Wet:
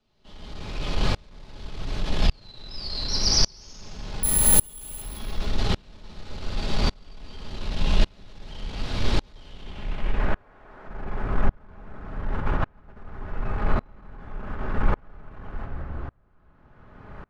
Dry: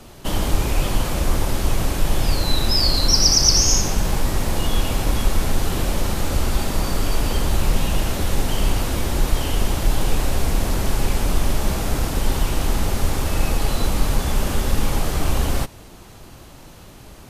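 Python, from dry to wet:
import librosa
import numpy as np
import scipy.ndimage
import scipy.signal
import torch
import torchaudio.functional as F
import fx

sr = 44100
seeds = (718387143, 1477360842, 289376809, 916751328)

y = fx.highpass(x, sr, hz=380.0, slope=12, at=(10.3, 10.87))
y = fx.over_compress(y, sr, threshold_db=-21.0, ratio=-0.5, at=(12.33, 12.98))
y = 10.0 ** (-15.5 / 20.0) * np.tanh(y / 10.0 ** (-15.5 / 20.0))
y = fx.filter_sweep_lowpass(y, sr, from_hz=4200.0, to_hz=1500.0, start_s=9.46, end_s=10.36, q=2.0)
y = fx.resample_bad(y, sr, factor=4, down='filtered', up='zero_stuff', at=(4.23, 5.02))
y = y + 10.0 ** (-11.5 / 20.0) * np.pad(y, (int(170 * sr / 1000.0), 0))[:len(y)]
y = fx.room_shoebox(y, sr, seeds[0], volume_m3=2200.0, walls='mixed', distance_m=1.4)
y = fx.tremolo_decay(y, sr, direction='swelling', hz=0.87, depth_db=33)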